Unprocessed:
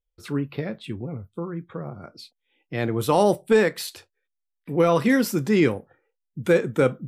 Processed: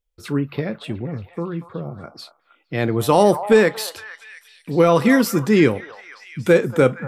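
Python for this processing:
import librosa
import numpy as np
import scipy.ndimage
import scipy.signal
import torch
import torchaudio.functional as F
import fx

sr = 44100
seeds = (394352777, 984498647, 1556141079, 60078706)

y = fx.peak_eq(x, sr, hz=fx.line((1.58, 4200.0), (2.0, 1300.0)), db=-14.0, octaves=1.3, at=(1.58, 2.0), fade=0.02)
y = fx.echo_stepped(y, sr, ms=233, hz=910.0, octaves=0.7, feedback_pct=70, wet_db=-9.5)
y = F.gain(torch.from_numpy(y), 4.5).numpy()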